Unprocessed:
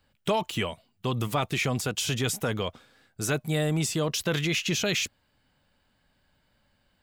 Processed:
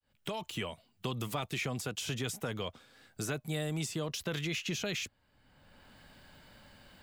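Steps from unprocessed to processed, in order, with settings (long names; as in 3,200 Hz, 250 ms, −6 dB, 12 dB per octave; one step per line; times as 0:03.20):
fade in at the beginning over 0.79 s
multiband upward and downward compressor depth 70%
level −8.5 dB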